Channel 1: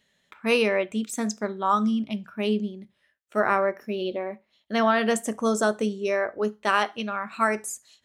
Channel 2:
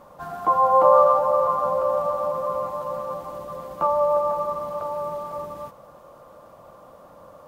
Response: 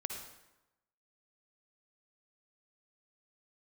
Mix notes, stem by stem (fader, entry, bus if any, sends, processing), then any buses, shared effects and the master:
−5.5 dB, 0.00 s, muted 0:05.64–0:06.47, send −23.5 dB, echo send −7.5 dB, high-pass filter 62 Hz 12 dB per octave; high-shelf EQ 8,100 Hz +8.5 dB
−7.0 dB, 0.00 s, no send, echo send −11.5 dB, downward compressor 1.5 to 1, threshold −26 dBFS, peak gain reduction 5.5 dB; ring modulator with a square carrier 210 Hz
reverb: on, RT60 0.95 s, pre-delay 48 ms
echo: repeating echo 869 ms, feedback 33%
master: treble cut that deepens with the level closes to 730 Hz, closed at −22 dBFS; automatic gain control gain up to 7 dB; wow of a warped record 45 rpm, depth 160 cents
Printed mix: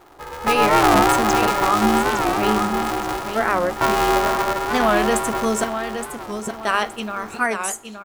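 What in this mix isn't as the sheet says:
stem 2 −7.0 dB → −1.0 dB
master: missing treble cut that deepens with the level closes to 730 Hz, closed at −22 dBFS

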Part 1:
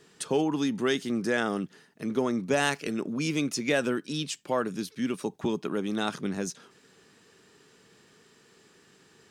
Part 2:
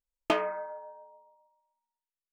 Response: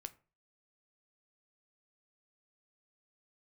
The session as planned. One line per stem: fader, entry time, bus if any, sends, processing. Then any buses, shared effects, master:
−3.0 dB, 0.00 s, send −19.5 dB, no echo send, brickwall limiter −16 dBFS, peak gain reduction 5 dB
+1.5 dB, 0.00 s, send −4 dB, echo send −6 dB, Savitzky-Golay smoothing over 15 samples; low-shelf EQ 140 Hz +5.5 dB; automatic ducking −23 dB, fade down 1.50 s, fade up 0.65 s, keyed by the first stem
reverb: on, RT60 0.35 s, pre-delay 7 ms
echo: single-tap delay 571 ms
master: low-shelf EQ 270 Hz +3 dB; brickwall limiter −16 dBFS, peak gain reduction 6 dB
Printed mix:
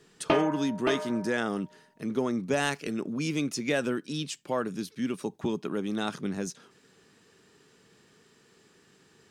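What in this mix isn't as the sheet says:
stem 1: missing brickwall limiter −16 dBFS, peak gain reduction 5 dB
master: missing brickwall limiter −16 dBFS, peak gain reduction 6 dB

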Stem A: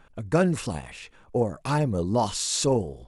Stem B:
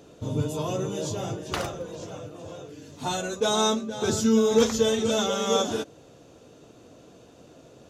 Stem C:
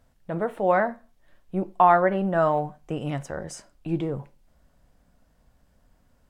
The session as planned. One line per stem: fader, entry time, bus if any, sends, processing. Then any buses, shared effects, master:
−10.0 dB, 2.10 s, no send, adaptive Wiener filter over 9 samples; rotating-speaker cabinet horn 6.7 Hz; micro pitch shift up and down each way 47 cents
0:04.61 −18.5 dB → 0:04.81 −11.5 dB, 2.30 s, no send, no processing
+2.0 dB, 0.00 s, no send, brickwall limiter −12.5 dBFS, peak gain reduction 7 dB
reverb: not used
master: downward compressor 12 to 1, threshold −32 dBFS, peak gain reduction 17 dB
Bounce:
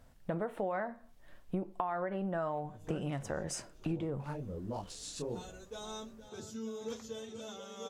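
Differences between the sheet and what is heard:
stem A: entry 2.10 s → 2.55 s
stem B −18.5 dB → −28.0 dB

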